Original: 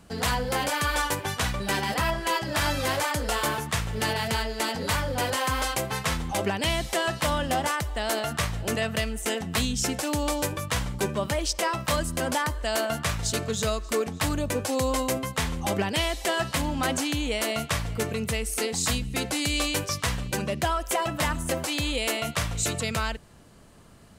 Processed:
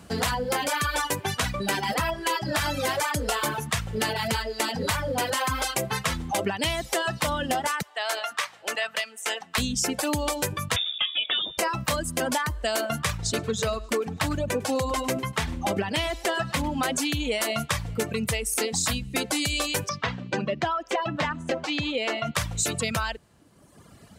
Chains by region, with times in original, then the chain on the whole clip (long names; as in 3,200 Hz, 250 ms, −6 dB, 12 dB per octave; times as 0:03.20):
0:07.82–0:09.58: high-pass filter 810 Hz + high-shelf EQ 7,200 Hz −10 dB
0:10.76–0:11.58: high-frequency loss of the air 96 metres + voice inversion scrambler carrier 3,600 Hz
0:13.17–0:16.68: high-shelf EQ 5,500 Hz −7 dB + single-tap delay 101 ms −11.5 dB
0:19.89–0:22.35: high-pass filter 120 Hz + high-frequency loss of the air 170 metres
whole clip: reverb reduction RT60 1.3 s; high-pass filter 61 Hz; downward compressor, threshold −28 dBFS; level +5.5 dB